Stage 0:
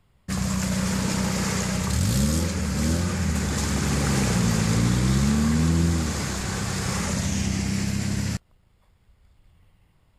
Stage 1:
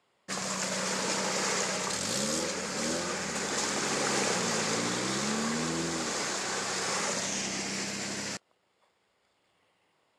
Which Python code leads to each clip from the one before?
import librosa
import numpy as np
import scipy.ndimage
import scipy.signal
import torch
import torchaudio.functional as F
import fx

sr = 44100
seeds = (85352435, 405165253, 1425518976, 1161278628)

y = scipy.signal.sosfilt(scipy.signal.cheby1(2, 1.0, [430.0, 7300.0], 'bandpass', fs=sr, output='sos'), x)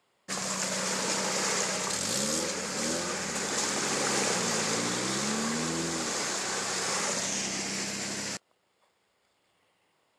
y = fx.high_shelf(x, sr, hz=8800.0, db=6.5)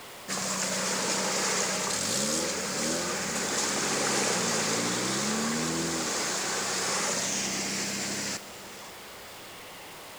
y = x + 0.5 * 10.0 ** (-38.5 / 20.0) * np.sign(x)
y = y + 10.0 ** (-17.0 / 20.0) * np.pad(y, (int(534 * sr / 1000.0), 0))[:len(y)]